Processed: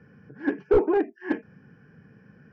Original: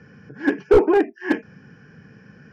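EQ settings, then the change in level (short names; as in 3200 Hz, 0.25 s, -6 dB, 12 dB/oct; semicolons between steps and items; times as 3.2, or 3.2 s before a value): LPF 1700 Hz 6 dB/oct; -5.5 dB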